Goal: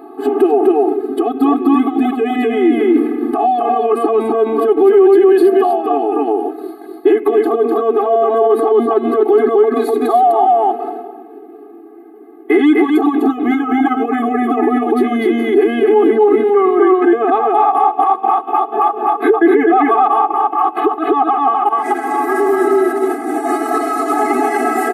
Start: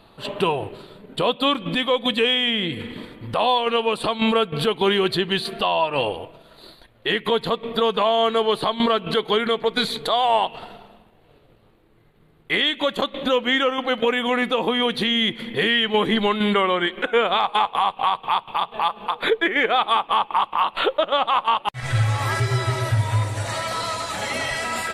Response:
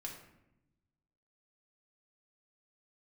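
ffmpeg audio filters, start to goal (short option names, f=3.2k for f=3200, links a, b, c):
-filter_complex "[0:a]firequalizer=gain_entry='entry(130,0);entry(310,12);entry(3300,-22);entry(12000,1)':delay=0.05:min_phase=1,asplit=2[a][b];[b]aecho=0:1:251:0.708[c];[a][c]amix=inputs=2:normalize=0,alimiter=level_in=14dB:limit=-1dB:release=50:level=0:latency=1,afftfilt=real='re*eq(mod(floor(b*sr/1024/220),2),1)':imag='im*eq(mod(floor(b*sr/1024/220),2),1)':win_size=1024:overlap=0.75,volume=-1dB"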